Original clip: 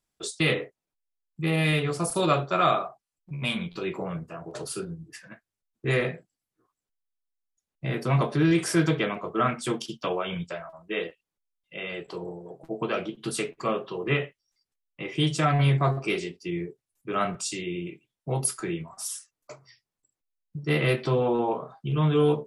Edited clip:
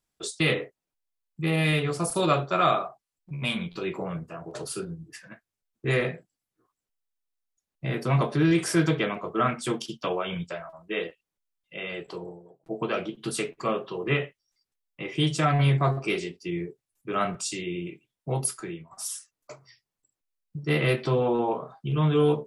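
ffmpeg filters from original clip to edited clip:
ffmpeg -i in.wav -filter_complex "[0:a]asplit=3[link_01][link_02][link_03];[link_01]atrim=end=12.66,asetpts=PTS-STARTPTS,afade=type=out:start_time=12.1:duration=0.56[link_04];[link_02]atrim=start=12.66:end=18.91,asetpts=PTS-STARTPTS,afade=type=in:duration=0.004:curve=hsin,afade=type=out:start_time=5.69:duration=0.56:silence=0.251189[link_05];[link_03]atrim=start=18.91,asetpts=PTS-STARTPTS,afade=type=in:duration=0.004:curve=hsin:silence=0.251189[link_06];[link_04][link_05][link_06]concat=n=3:v=0:a=1" out.wav

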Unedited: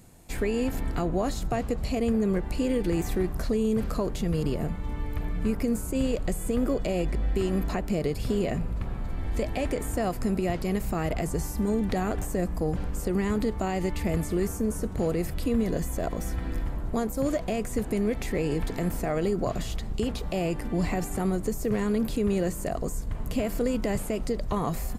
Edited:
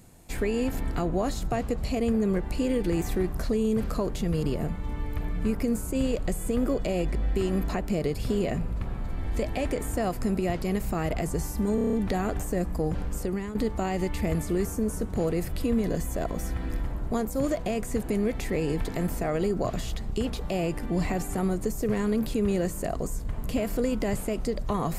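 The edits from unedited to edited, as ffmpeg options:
ffmpeg -i in.wav -filter_complex "[0:a]asplit=8[link_01][link_02][link_03][link_04][link_05][link_06][link_07][link_08];[link_01]atrim=end=11.782[link_09];[link_02]atrim=start=11.748:end=11.782[link_10];[link_03]atrim=start=11.748:end=11.782[link_11];[link_04]atrim=start=11.748:end=11.782[link_12];[link_05]atrim=start=11.748:end=11.782[link_13];[link_06]atrim=start=11.748:end=11.782[link_14];[link_07]atrim=start=11.748:end=13.37,asetpts=PTS-STARTPTS,afade=type=out:start_time=1.242:duration=0.38:silence=0.251189[link_15];[link_08]atrim=start=13.37,asetpts=PTS-STARTPTS,afade=type=in:duration=0.004:curve=hsin:silence=0.251189[link_16];[link_09][link_10]acrossfade=duration=0.004:curve1=hsin:curve2=hsin[link_17];[link_17][link_11]acrossfade=duration=0.004:curve1=hsin:curve2=hsin[link_18];[link_18][link_12]acrossfade=duration=0.004:curve1=hsin:curve2=hsin[link_19];[link_19][link_13]acrossfade=duration=0.004:curve1=hsin:curve2=hsin[link_20];[link_20][link_14]acrossfade=duration=0.004:curve1=hsin:curve2=hsin[link_21];[link_15][link_16]concat=n=2:v=0:a=1[link_22];[link_21][link_22]acrossfade=duration=0.004:curve1=hsin:curve2=hsin" out.wav

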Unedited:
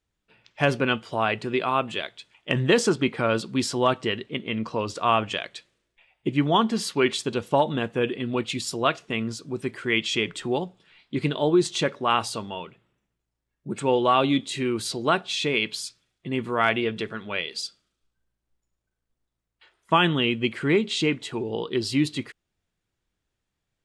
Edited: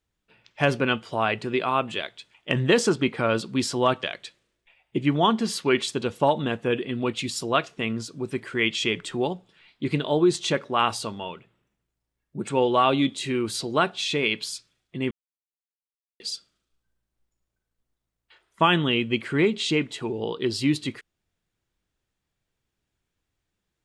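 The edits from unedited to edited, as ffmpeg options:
ffmpeg -i in.wav -filter_complex "[0:a]asplit=4[link_01][link_02][link_03][link_04];[link_01]atrim=end=4.032[link_05];[link_02]atrim=start=5.338:end=16.42,asetpts=PTS-STARTPTS,afade=type=out:start_time=11.078:duration=0.004:curve=hsin[link_06];[link_03]atrim=start=16.42:end=17.51,asetpts=PTS-STARTPTS,volume=0[link_07];[link_04]atrim=start=17.51,asetpts=PTS-STARTPTS,afade=type=in:duration=0.004:curve=hsin[link_08];[link_06][link_07][link_08]concat=n=3:v=0:a=1[link_09];[link_05][link_09]acrossfade=duration=0.004:curve1=hsin:curve2=hsin" out.wav

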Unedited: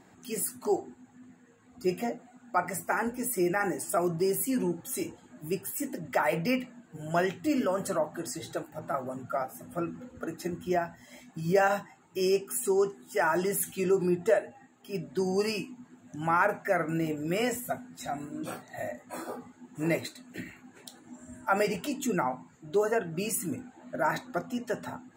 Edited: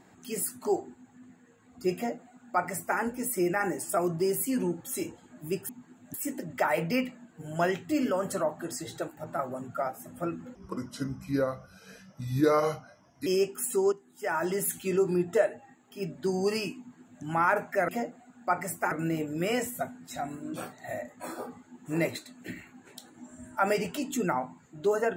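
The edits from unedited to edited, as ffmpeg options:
ffmpeg -i in.wav -filter_complex "[0:a]asplit=8[link_01][link_02][link_03][link_04][link_05][link_06][link_07][link_08];[link_01]atrim=end=5.692[link_09];[link_02]atrim=start=15.708:end=16.162[link_10];[link_03]atrim=start=5.688:end=10.104[link_11];[link_04]atrim=start=10.1:end=12.19,asetpts=PTS-STARTPTS,asetrate=33957,aresample=44100[link_12];[link_05]atrim=start=12.186:end=12.85,asetpts=PTS-STARTPTS,afade=type=out:start_time=0.66:duration=0.004:curve=hsin:silence=0.199526[link_13];[link_06]atrim=start=12.85:end=16.812,asetpts=PTS-STARTPTS,afade=type=in:duration=0.7:silence=0.199526[link_14];[link_07]atrim=start=1.948:end=2.982[link_15];[link_08]atrim=start=16.808[link_16];[link_09][link_10]acrossfade=duration=0.004:curve1=hsin:curve2=hsin[link_17];[link_17][link_11]acrossfade=duration=0.004:curve1=hsin:curve2=hsin[link_18];[link_18][link_12]acrossfade=duration=0.004:curve1=hsin:curve2=hsin[link_19];[link_13][link_14]concat=n=2:v=0:a=1[link_20];[link_19][link_20]acrossfade=duration=0.004:curve1=hsin:curve2=hsin[link_21];[link_21][link_15]acrossfade=duration=0.004:curve1=hsin:curve2=hsin[link_22];[link_22][link_16]acrossfade=duration=0.004:curve1=hsin:curve2=hsin" out.wav

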